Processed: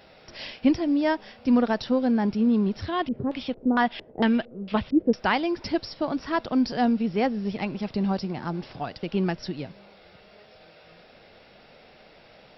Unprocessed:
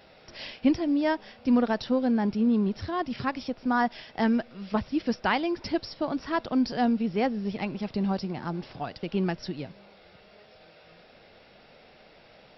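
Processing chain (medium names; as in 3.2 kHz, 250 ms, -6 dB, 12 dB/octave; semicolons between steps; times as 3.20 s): 2.86–5.14 s: LFO low-pass square 2.2 Hz 440–3300 Hz; trim +2 dB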